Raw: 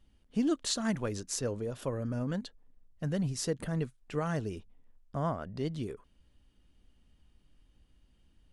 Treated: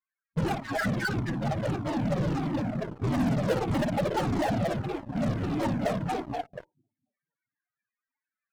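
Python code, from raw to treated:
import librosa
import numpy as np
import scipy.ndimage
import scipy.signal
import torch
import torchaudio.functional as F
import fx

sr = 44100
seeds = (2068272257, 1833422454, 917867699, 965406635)

p1 = fx.peak_eq(x, sr, hz=530.0, db=-6.5, octaves=2.3)
p2 = fx.echo_feedback(p1, sr, ms=238, feedback_pct=52, wet_db=-4.0)
p3 = fx.filter_sweep_lowpass(p2, sr, from_hz=2000.0, to_hz=490.0, start_s=0.25, end_s=2.92, q=3.6)
p4 = fx.dmg_noise_band(p3, sr, seeds[0], low_hz=800.0, high_hz=1900.0, level_db=-64.0)
p5 = fx.noise_reduce_blind(p4, sr, reduce_db=19)
p6 = fx.noise_vocoder(p5, sr, seeds[1], bands=4)
p7 = fx.peak_eq(p6, sr, hz=1600.0, db=3.0, octaves=0.45)
p8 = fx.spec_topn(p7, sr, count=8)
p9 = p8 + fx.room_flutter(p8, sr, wall_m=9.7, rt60_s=0.29, dry=0)
p10 = fx.spec_gate(p9, sr, threshold_db=-15, keep='strong')
p11 = fx.fuzz(p10, sr, gain_db=47.0, gate_db=-55.0)
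p12 = p10 + (p11 * librosa.db_to_amplitude(-9.0))
y = fx.comb_cascade(p12, sr, direction='falling', hz=1.6)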